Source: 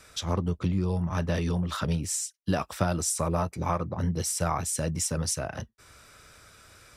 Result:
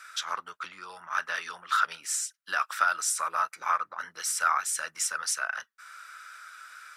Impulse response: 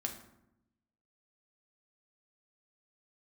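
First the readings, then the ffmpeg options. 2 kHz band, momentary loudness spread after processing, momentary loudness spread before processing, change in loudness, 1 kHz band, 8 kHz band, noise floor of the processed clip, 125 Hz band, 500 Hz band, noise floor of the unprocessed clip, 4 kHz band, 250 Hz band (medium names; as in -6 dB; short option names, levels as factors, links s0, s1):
+10.5 dB, 19 LU, 3 LU, -0.5 dB, +5.0 dB, +0.5 dB, -70 dBFS, under -35 dB, -14.0 dB, -60 dBFS, +1.0 dB, under -30 dB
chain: -af "highpass=f=1400:t=q:w=4.7"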